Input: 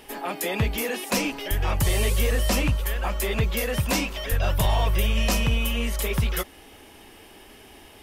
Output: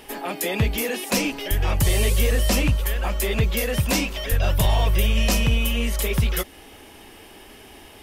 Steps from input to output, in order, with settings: dynamic EQ 1100 Hz, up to -4 dB, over -39 dBFS, Q 1; gain +3 dB

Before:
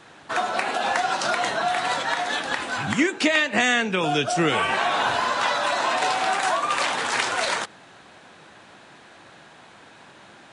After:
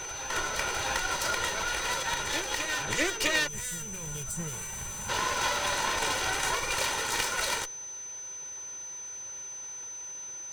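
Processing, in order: minimum comb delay 2.1 ms; high shelf 5100 Hz +7 dB; reverse echo 0.655 s -8 dB; spectral gain 3.48–5.09, 230–6800 Hz -16 dB; whine 6100 Hz -32 dBFS; gain -6 dB

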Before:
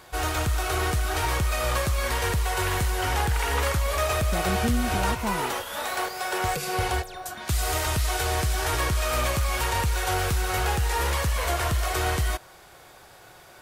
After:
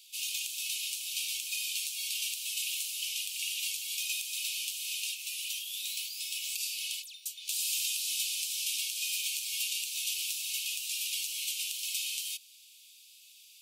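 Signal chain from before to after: steep high-pass 2500 Hz 96 dB/oct

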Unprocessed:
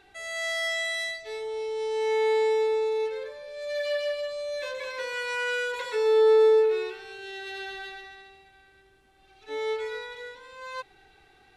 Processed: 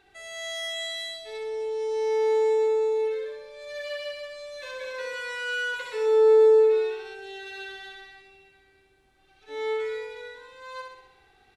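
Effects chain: feedback echo 64 ms, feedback 57%, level -4.5 dB; gain -4 dB

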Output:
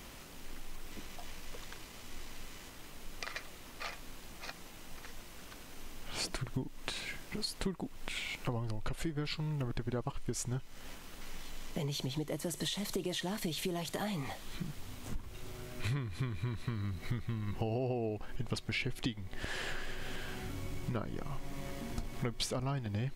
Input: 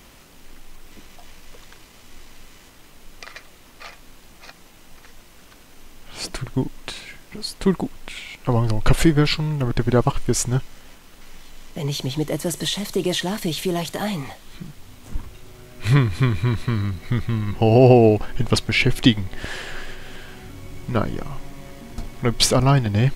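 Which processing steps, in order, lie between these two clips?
compressor 8:1, threshold -31 dBFS, peak gain reduction 22.5 dB; gain -2.5 dB

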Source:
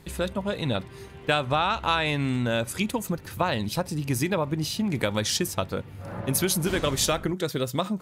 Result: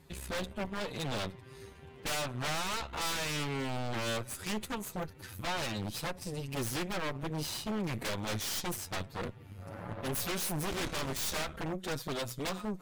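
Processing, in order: time stretch by phase-locked vocoder 1.6×; added harmonics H 3 -19 dB, 8 -17 dB, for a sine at -10.5 dBFS; wavefolder -24 dBFS; gain -4 dB

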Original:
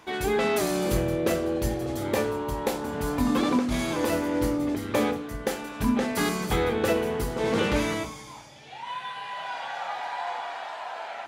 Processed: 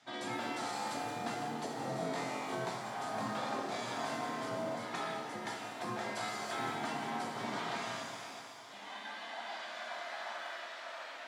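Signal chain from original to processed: 4.79–5.53 comb 2.4 ms, depth 81%; frequency shift +67 Hz; 1.82–2.65 flutter echo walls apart 3.9 m, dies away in 0.83 s; spectral gate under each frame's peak -10 dB weak; compressor, threshold -32 dBFS, peak gain reduction 8 dB; speaker cabinet 120–8000 Hz, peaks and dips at 270 Hz +4 dB, 480 Hz -5 dB, 690 Hz +9 dB, 2600 Hz -7 dB, 6400 Hz -4 dB; split-band echo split 460 Hz, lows 0.151 s, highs 0.511 s, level -11.5 dB; shimmer reverb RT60 1.2 s, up +7 st, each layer -8 dB, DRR 1.5 dB; gain -6 dB

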